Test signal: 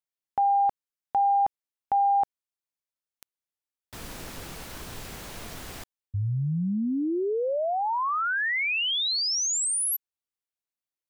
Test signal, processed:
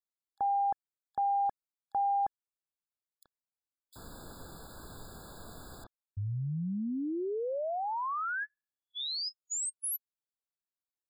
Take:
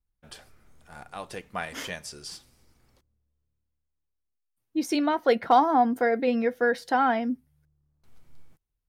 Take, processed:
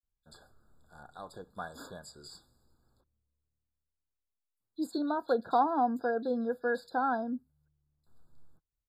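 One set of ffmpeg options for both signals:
ffmpeg -i in.wav -filter_complex "[0:a]acrossover=split=3200[link_01][link_02];[link_01]adelay=30[link_03];[link_03][link_02]amix=inputs=2:normalize=0,afftfilt=real='re*eq(mod(floor(b*sr/1024/1700),2),0)':imag='im*eq(mod(floor(b*sr/1024/1700),2),0)':win_size=1024:overlap=0.75,volume=-7dB" out.wav

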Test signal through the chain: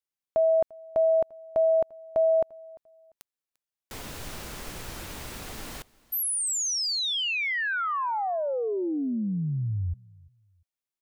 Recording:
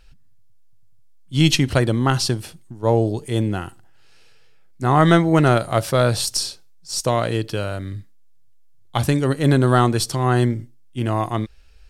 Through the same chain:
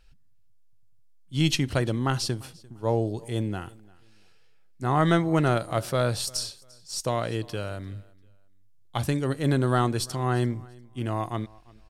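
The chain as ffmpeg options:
ffmpeg -i in.wav -af "aecho=1:1:346|692:0.0631|0.017,volume=-7.5dB" out.wav

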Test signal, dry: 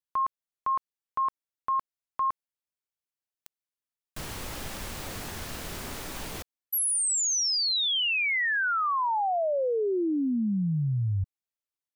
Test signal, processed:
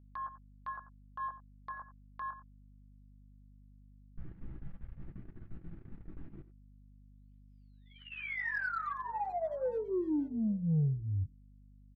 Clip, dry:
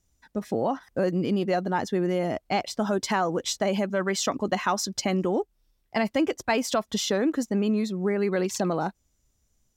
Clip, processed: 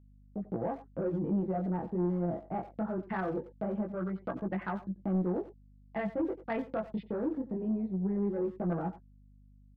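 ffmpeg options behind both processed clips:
ffmpeg -i in.wav -filter_complex "[0:a]bandreject=frequency=1000:width=18,aecho=1:1:6:0.38,afwtdn=0.0316,flanger=delay=15.5:depth=7.7:speed=0.21,lowpass=frequency=1800:width=0.5412,lowpass=frequency=1800:width=1.3066,adynamicequalizer=threshold=0.00447:dfrequency=1200:dqfactor=2.5:tfrequency=1200:tqfactor=2.5:attack=5:release=100:ratio=0.375:range=2:mode=cutabove:tftype=bell,agate=range=-33dB:threshold=-42dB:ratio=3:release=44:detection=rms,crystalizer=i=1.5:c=0,equalizer=frequency=830:width_type=o:width=2.9:gain=-6.5,aresample=11025,asoftclip=type=tanh:threshold=-23.5dB,aresample=44100,asplit=2[link_01][link_02];[link_02]adelay=90,highpass=300,lowpass=3400,asoftclip=type=hard:threshold=-31.5dB,volume=-14dB[link_03];[link_01][link_03]amix=inputs=2:normalize=0,aeval=exprs='val(0)+0.00141*(sin(2*PI*50*n/s)+sin(2*PI*2*50*n/s)/2+sin(2*PI*3*50*n/s)/3+sin(2*PI*4*50*n/s)/4+sin(2*PI*5*50*n/s)/5)':channel_layout=same" out.wav

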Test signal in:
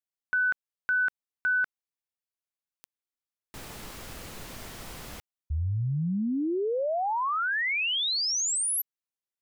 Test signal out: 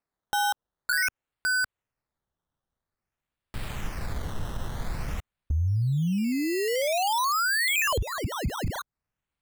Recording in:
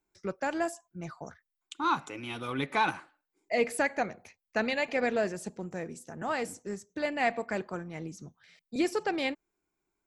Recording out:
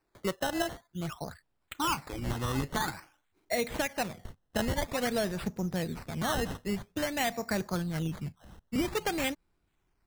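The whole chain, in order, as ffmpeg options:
ffmpeg -i in.wav -af "acrusher=samples=13:mix=1:aa=0.000001:lfo=1:lforange=13:lforate=0.5,asubboost=boost=4:cutoff=160,acompressor=threshold=-26dB:ratio=12:attack=0.66:release=526:knee=1:detection=rms,volume=4dB" out.wav

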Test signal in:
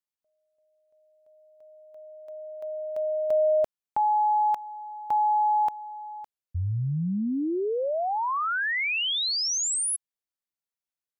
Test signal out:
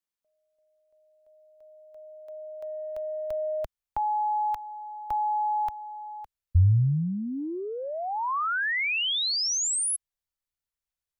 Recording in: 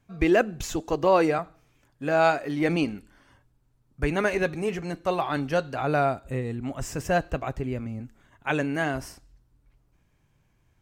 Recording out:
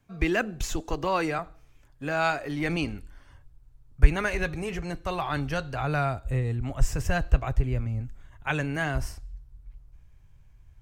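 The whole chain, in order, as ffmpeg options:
ffmpeg -i in.wav -filter_complex "[0:a]asubboost=boost=9:cutoff=77,acrossover=split=290|880|6600[link_01][link_02][link_03][link_04];[link_02]acompressor=threshold=-38dB:ratio=6:attack=17:release=21:knee=1:detection=rms[link_05];[link_01][link_05][link_03][link_04]amix=inputs=4:normalize=0" out.wav

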